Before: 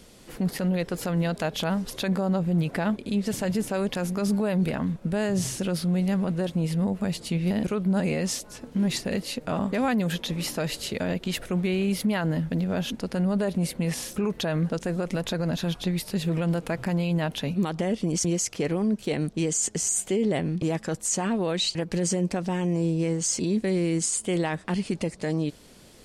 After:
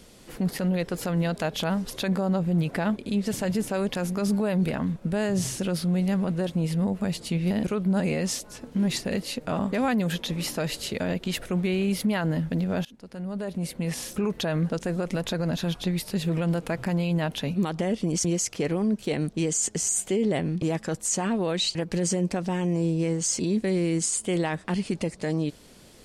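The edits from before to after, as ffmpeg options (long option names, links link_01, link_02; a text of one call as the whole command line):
ffmpeg -i in.wav -filter_complex "[0:a]asplit=2[link_01][link_02];[link_01]atrim=end=12.85,asetpts=PTS-STARTPTS,afade=type=out:start_time=12.846:duration=0.004:curve=hsin:silence=0.0707946[link_03];[link_02]atrim=start=12.85,asetpts=PTS-STARTPTS,afade=type=in:duration=1.3:silence=0.0707946[link_04];[link_03][link_04]concat=n=2:v=0:a=1" out.wav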